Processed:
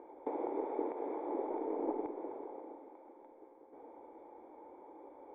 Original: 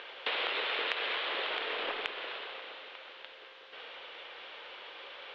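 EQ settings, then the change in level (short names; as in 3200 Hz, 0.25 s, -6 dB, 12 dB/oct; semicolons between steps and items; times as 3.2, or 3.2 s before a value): dynamic EQ 430 Hz, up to +4 dB, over -51 dBFS, Q 0.88; vocal tract filter u; bell 2800 Hz -11.5 dB 0.38 oct; +14.0 dB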